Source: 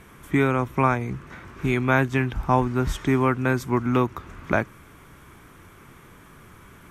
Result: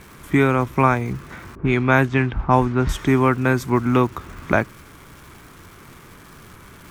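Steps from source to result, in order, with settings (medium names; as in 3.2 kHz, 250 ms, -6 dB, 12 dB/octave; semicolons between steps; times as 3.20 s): crackle 550 per s -42 dBFS; 1.55–2.89 s: level-controlled noise filter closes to 570 Hz, open at -14.5 dBFS; trim +4 dB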